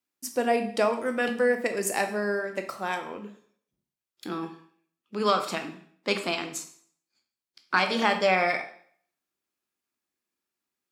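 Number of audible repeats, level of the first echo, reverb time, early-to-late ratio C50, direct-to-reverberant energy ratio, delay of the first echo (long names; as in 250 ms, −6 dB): no echo audible, no echo audible, 0.55 s, 10.0 dB, 6.0 dB, no echo audible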